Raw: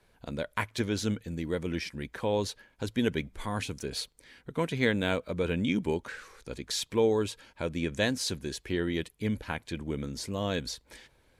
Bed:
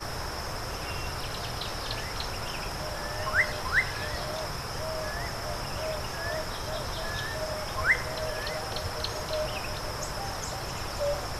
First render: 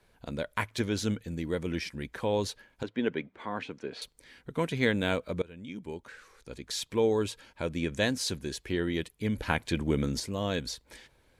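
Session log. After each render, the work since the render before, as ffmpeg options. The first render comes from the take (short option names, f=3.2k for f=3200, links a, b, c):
-filter_complex "[0:a]asettb=1/sr,asplit=3[a][b][c];[a]atrim=end=2.834[d];[b]atrim=start=2.83:end=4.02,asetpts=PTS-STARTPTS,afade=t=in:d=0.004:c=qsin,afade=t=out:st=1.186:d=0.004:c=qsin,highpass=230,lowpass=2.5k[e];[c]atrim=start=4.016[f];[d][e]acrossfade=d=0.004:c1=hsin:c2=qsin[g];[g][f]acrossfade=d=0.004:c1=qsin:c2=hsin,asettb=1/sr,asplit=3[h][i][j];[h]atrim=end=9.384[k];[i]atrim=start=9.38:end=10.2,asetpts=PTS-STARTPTS,afade=t=in:d=0.004:c=qsin,afade=t=out:st=0.816:d=0.004:c=qsin,acontrast=59[l];[j]atrim=start=10.196[m];[k][l]acrossfade=d=0.004:c1=hsin:c2=qsin[n];[n][m]acrossfade=d=0.004:c1=qsin:c2=hsin,asplit=2[o][p];[o]atrim=end=5.42,asetpts=PTS-STARTPTS,afade=t=out:st=5.416:d=0.004:c=hsin:silence=0.0749894[q];[p]atrim=start=5.42,asetpts=PTS-STARTPTS,afade=t=in:d=1.81:silence=0.0749894[r];[q][r]concat=n=2:v=0:a=1"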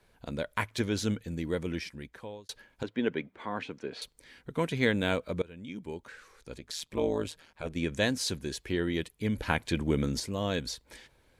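-filter_complex "[0:a]asplit=3[a][b][c];[a]afade=t=out:st=6.58:d=0.02[d];[b]tremolo=f=160:d=0.857,afade=t=in:st=6.58:d=0.02,afade=t=out:st=7.75:d=0.02[e];[c]afade=t=in:st=7.75:d=0.02[f];[d][e][f]amix=inputs=3:normalize=0,asplit=2[g][h];[g]atrim=end=2.49,asetpts=PTS-STARTPTS,afade=t=out:st=1.58:d=0.91[i];[h]atrim=start=2.49,asetpts=PTS-STARTPTS,afade=t=in:d=0.004:c=hsin[j];[i][j]concat=n=2:v=0:a=1"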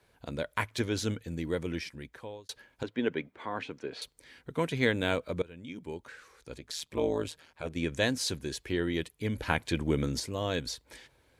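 -af "highpass=46,equalizer=f=200:w=7.9:g=-9"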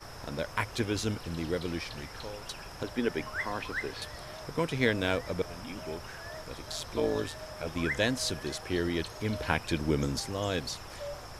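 -filter_complex "[1:a]volume=-10.5dB[a];[0:a][a]amix=inputs=2:normalize=0"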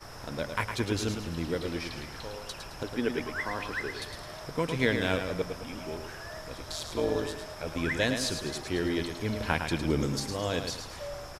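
-af "aecho=1:1:108|216|324|432:0.447|0.17|0.0645|0.0245"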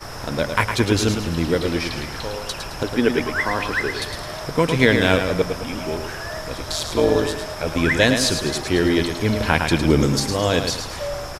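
-af "volume=11.5dB,alimiter=limit=-1dB:level=0:latency=1"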